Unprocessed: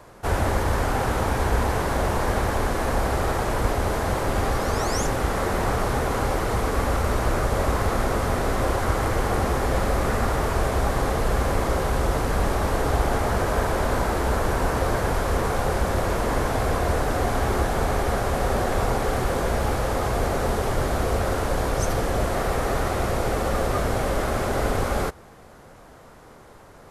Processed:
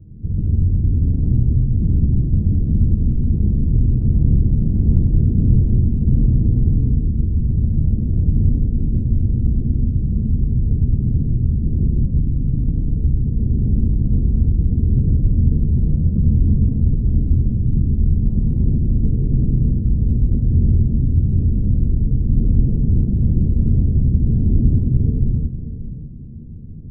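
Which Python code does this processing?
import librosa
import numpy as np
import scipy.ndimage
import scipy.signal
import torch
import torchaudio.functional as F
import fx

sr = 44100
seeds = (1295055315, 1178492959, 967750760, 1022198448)

y = fx.halfwave_hold(x, sr)
y = scipy.signal.sosfilt(scipy.signal.cheby2(4, 80, 1300.0, 'lowpass', fs=sr, output='sos'), y)
y = fx.over_compress(y, sr, threshold_db=-24.0, ratio=-1.0)
y = fx.wow_flutter(y, sr, seeds[0], rate_hz=2.1, depth_cents=27.0)
y = y + 10.0 ** (-12.0 / 20.0) * np.pad(y, (int(584 * sr / 1000.0), 0))[:len(y)]
y = fx.rev_gated(y, sr, seeds[1], gate_ms=420, shape='flat', drr_db=-6.5)
y = y * librosa.db_to_amplitude(1.0)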